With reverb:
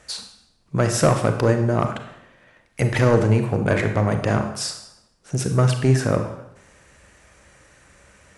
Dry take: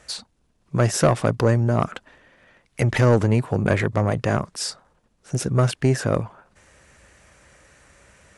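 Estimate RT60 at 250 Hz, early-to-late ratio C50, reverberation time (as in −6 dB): 0.80 s, 8.0 dB, 0.80 s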